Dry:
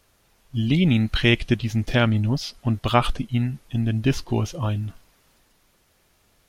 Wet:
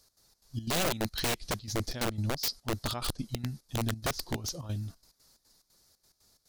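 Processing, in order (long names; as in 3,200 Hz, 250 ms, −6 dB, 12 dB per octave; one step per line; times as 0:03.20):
high shelf with overshoot 3,600 Hz +8 dB, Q 3
gate pattern "x.xx.xx.xxx." 179 BPM −12 dB
wrap-around overflow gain 15.5 dB
level −8.5 dB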